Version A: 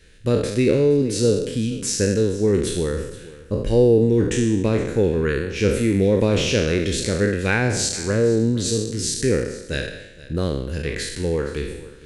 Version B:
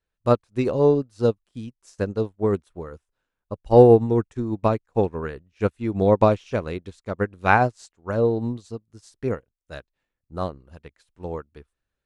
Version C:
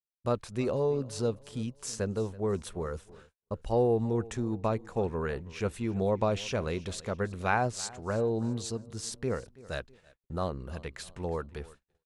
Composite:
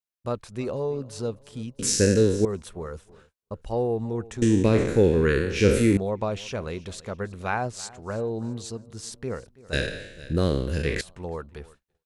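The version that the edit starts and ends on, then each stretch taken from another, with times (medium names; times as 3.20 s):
C
1.79–2.45 s: from A
4.42–5.97 s: from A
9.73–11.01 s: from A
not used: B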